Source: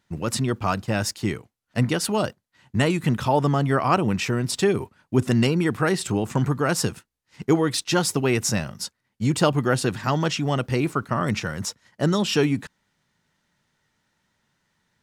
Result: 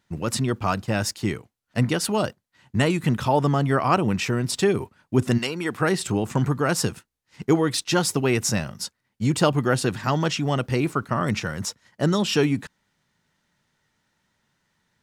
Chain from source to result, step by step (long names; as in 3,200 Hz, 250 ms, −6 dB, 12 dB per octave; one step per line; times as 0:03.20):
0:05.37–0:05.80: high-pass filter 1,200 Hz → 310 Hz 6 dB per octave